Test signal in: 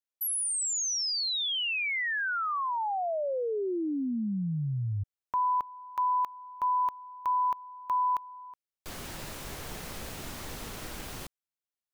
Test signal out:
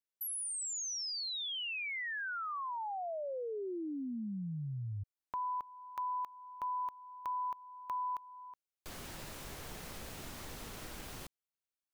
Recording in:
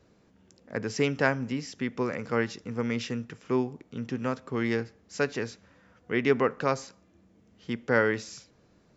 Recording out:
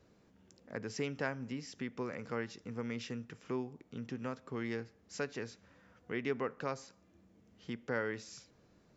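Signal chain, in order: compression 1.5:1, threshold -42 dBFS; trim -4 dB

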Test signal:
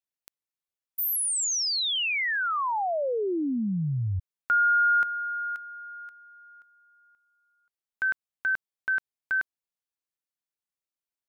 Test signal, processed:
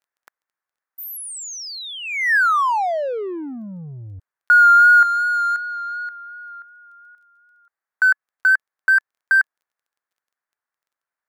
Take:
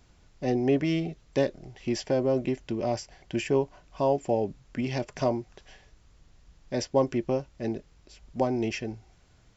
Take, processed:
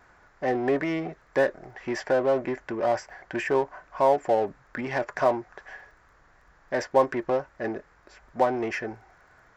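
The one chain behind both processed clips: FFT filter 230 Hz 0 dB, 1.7 kHz +12 dB, 2.9 kHz -9 dB; vibrato 2.7 Hz 28 cents; crackle 12 per s -60 dBFS; in parallel at -3 dB: saturation -31 dBFS; on the sum: bass shelf 300 Hz -11.5 dB

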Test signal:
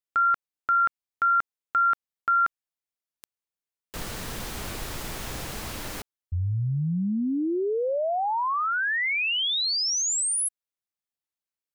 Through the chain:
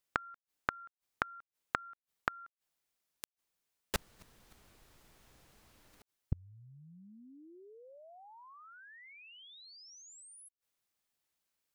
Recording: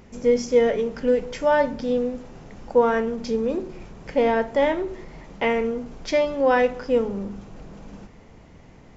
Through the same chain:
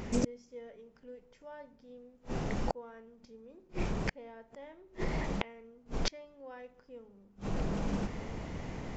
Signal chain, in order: inverted gate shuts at -25 dBFS, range -37 dB; loudspeaker Doppler distortion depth 0.13 ms; trim +7.5 dB

